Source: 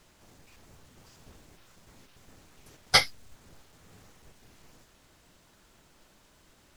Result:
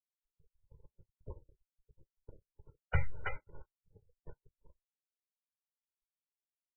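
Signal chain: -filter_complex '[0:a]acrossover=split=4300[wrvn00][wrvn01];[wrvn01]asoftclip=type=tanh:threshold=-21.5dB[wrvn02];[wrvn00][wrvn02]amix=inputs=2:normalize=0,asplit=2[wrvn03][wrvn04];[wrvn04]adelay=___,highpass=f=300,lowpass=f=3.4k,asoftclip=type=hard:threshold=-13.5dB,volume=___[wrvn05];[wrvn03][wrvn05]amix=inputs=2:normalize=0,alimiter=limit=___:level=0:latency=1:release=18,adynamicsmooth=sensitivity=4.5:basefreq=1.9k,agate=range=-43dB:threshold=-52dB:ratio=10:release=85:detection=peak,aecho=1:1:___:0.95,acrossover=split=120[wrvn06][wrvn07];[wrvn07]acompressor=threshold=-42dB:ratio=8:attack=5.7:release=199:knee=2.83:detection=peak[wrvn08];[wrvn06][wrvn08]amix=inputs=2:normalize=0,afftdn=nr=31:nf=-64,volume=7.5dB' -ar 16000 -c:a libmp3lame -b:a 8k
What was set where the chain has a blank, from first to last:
320, -14dB, -8dB, 2.1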